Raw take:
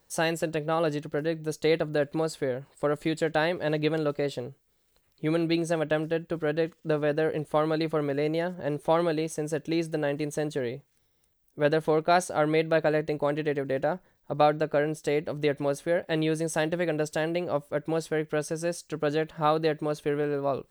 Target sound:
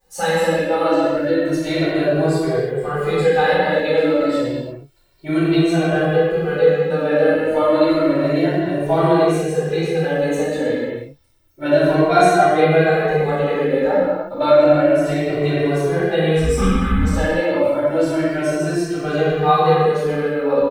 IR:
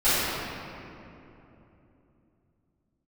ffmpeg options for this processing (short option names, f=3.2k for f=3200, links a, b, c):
-filter_complex "[0:a]asplit=3[a][b][c];[a]afade=t=out:st=16.35:d=0.02[d];[b]afreqshift=-430,afade=t=in:st=16.35:d=0.02,afade=t=out:st=17.02:d=0.02[e];[c]afade=t=in:st=17.02:d=0.02[f];[d][e][f]amix=inputs=3:normalize=0[g];[1:a]atrim=start_sample=2205,afade=t=out:st=0.42:d=0.01,atrim=end_sample=18963[h];[g][h]afir=irnorm=-1:irlink=0,asplit=2[i][j];[j]adelay=2,afreqshift=0.3[k];[i][k]amix=inputs=2:normalize=1,volume=-5dB"